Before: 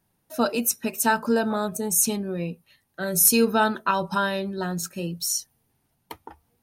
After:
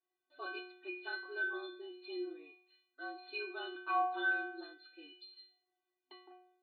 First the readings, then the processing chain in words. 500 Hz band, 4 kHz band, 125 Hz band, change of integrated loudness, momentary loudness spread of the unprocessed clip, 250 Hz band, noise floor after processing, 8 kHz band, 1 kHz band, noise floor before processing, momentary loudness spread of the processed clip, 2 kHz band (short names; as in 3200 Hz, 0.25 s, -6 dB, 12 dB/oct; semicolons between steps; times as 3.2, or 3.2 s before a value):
-19.0 dB, -16.0 dB, under -40 dB, -16.0 dB, 13 LU, -22.5 dB, under -85 dBFS, under -40 dB, -13.0 dB, -72 dBFS, 21 LU, -7.0 dB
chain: frequency shift -44 Hz; metallic resonator 360 Hz, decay 0.71 s, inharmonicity 0.008; FFT band-pass 260–4700 Hz; gain +6.5 dB